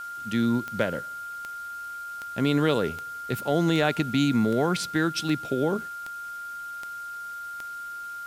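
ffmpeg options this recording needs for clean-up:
-af "adeclick=t=4,bandreject=f=1.4k:w=30,afwtdn=0.0025"

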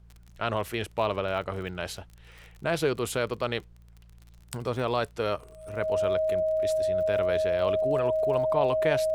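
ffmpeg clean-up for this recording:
-af "adeclick=t=4,bandreject=f=57.4:t=h:w=4,bandreject=f=114.8:t=h:w=4,bandreject=f=172.2:t=h:w=4,bandreject=f=630:w=30,agate=range=-21dB:threshold=-44dB"

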